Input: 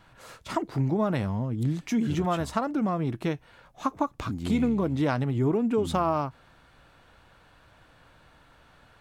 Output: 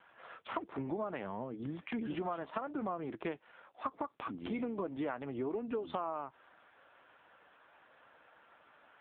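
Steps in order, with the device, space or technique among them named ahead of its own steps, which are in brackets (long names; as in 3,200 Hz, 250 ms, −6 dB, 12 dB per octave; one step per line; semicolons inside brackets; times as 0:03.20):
voicemail (band-pass filter 370–3,100 Hz; downward compressor 6 to 1, threshold −33 dBFS, peak gain reduction 11.5 dB; AMR narrowband 6.7 kbit/s 8,000 Hz)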